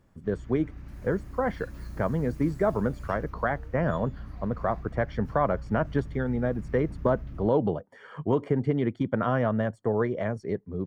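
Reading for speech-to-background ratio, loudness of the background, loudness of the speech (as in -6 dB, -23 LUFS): 14.0 dB, -42.5 LUFS, -28.5 LUFS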